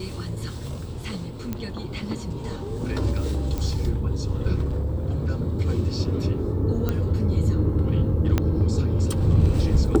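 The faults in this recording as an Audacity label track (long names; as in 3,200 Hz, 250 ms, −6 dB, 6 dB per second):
1.530000	1.530000	click −15 dBFS
3.580000	3.580000	click
4.610000	5.300000	clipping −20.5 dBFS
6.890000	6.890000	click −12 dBFS
8.380000	8.380000	click −8 dBFS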